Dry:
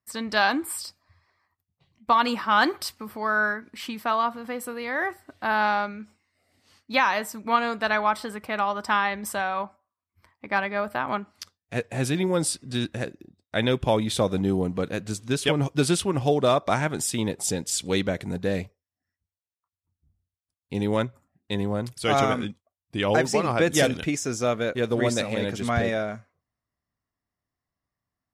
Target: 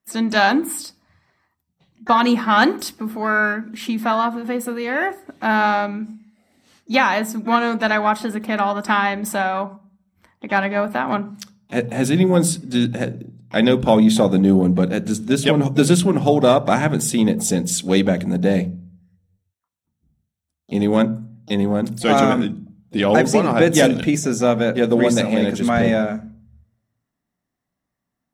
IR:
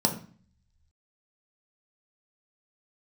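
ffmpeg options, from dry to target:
-filter_complex "[0:a]asplit=2[s0][s1];[s1]asetrate=66075,aresample=44100,atempo=0.66742,volume=0.126[s2];[s0][s2]amix=inputs=2:normalize=0,asplit=2[s3][s4];[1:a]atrim=start_sample=2205,lowshelf=f=290:g=7.5[s5];[s4][s5]afir=irnorm=-1:irlink=0,volume=0.0891[s6];[s3][s6]amix=inputs=2:normalize=0,volume=1.58"

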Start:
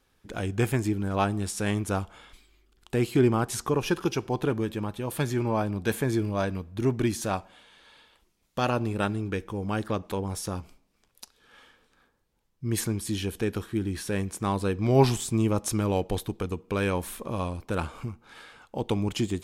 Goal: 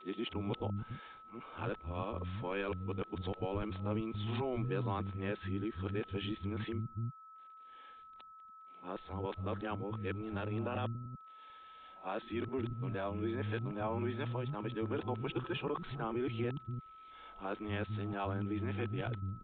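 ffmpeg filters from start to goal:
-filter_complex "[0:a]areverse,alimiter=limit=0.0944:level=0:latency=1:release=19,aresample=8000,aeval=exprs='val(0)*gte(abs(val(0)),0.00106)':c=same,aresample=44100,acrossover=split=210[s0][s1];[s0]adelay=290[s2];[s2][s1]amix=inputs=2:normalize=0,aeval=exprs='val(0)+0.00501*sin(2*PI*1300*n/s)':c=same,volume=0.473"

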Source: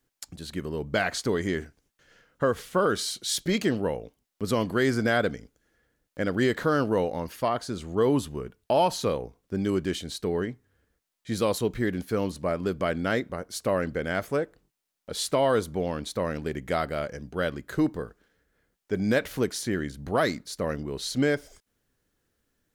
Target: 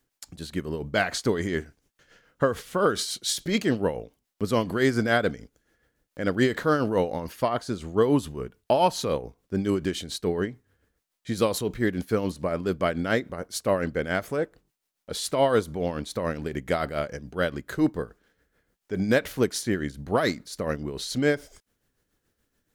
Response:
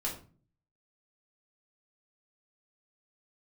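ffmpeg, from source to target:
-af "tremolo=f=7:d=0.55,volume=1.5"

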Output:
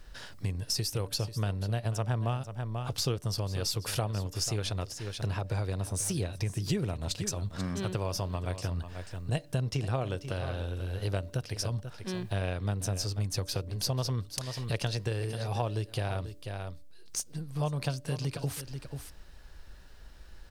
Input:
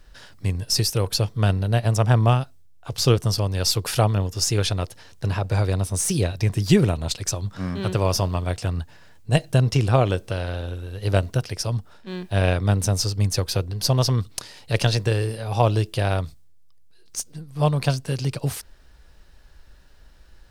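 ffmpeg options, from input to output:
-filter_complex "[0:a]bandreject=f=290.2:t=h:w=4,bandreject=f=580.4:t=h:w=4,asplit=2[s0][s1];[s1]aecho=0:1:488:0.178[s2];[s0][s2]amix=inputs=2:normalize=0,acompressor=threshold=0.0251:ratio=3"

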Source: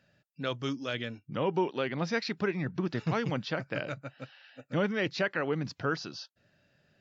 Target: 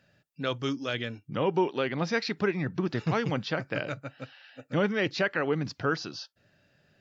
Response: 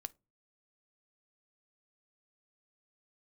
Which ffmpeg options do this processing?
-filter_complex "[0:a]asplit=2[s0][s1];[1:a]atrim=start_sample=2205,atrim=end_sample=3528[s2];[s1][s2]afir=irnorm=-1:irlink=0,volume=1.12[s3];[s0][s3]amix=inputs=2:normalize=0,volume=0.794"

